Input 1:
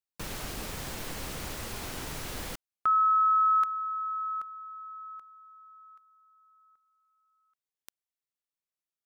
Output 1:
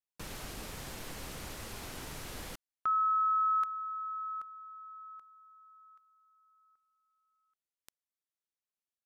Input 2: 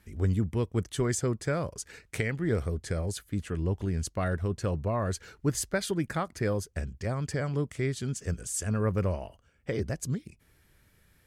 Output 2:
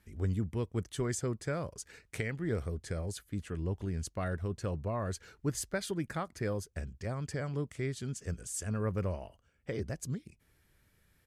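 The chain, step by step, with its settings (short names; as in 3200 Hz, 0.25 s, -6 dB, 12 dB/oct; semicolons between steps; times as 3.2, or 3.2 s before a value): downsampling 32000 Hz; gain -5.5 dB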